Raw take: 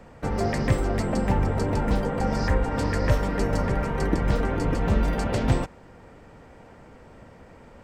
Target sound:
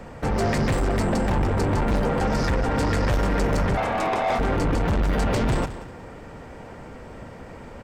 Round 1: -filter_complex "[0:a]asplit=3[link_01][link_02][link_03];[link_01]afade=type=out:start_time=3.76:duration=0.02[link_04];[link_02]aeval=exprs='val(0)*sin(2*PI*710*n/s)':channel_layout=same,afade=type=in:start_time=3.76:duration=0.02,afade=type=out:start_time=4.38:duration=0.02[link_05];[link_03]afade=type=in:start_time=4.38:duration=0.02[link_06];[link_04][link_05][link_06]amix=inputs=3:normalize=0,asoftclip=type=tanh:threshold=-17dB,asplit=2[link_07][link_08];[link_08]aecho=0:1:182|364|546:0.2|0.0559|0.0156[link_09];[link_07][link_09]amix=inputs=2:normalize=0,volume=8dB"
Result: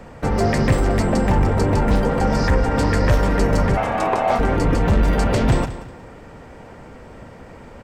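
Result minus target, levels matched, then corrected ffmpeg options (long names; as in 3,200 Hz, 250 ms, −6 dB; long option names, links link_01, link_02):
soft clipping: distortion −9 dB
-filter_complex "[0:a]asplit=3[link_01][link_02][link_03];[link_01]afade=type=out:start_time=3.76:duration=0.02[link_04];[link_02]aeval=exprs='val(0)*sin(2*PI*710*n/s)':channel_layout=same,afade=type=in:start_time=3.76:duration=0.02,afade=type=out:start_time=4.38:duration=0.02[link_05];[link_03]afade=type=in:start_time=4.38:duration=0.02[link_06];[link_04][link_05][link_06]amix=inputs=3:normalize=0,asoftclip=type=tanh:threshold=-27dB,asplit=2[link_07][link_08];[link_08]aecho=0:1:182|364|546:0.2|0.0559|0.0156[link_09];[link_07][link_09]amix=inputs=2:normalize=0,volume=8dB"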